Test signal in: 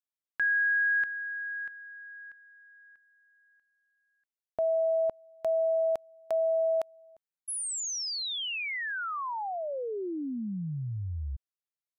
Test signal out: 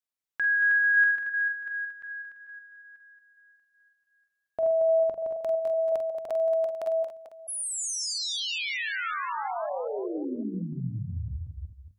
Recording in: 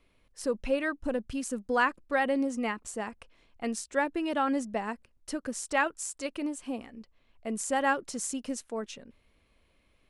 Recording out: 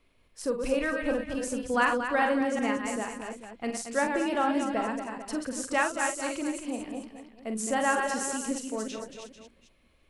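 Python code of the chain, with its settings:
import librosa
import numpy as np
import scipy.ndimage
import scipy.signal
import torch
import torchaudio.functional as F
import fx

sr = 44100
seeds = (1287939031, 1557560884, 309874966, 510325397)

p1 = fx.reverse_delay(x, sr, ms=185, wet_db=-5.0)
p2 = fx.hum_notches(p1, sr, base_hz=50, count=4)
y = p2 + fx.echo_multitap(p2, sr, ms=(46, 228, 443), db=(-8.0, -8.5, -13.5), dry=0)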